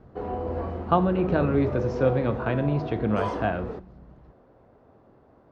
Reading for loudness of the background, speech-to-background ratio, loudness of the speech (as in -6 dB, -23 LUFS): -32.0 LUFS, 6.0 dB, -26.0 LUFS